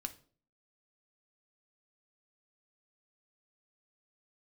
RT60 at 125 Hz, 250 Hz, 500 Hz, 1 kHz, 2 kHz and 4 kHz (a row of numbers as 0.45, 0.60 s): 0.55, 0.55, 0.50, 0.40, 0.35, 0.35 s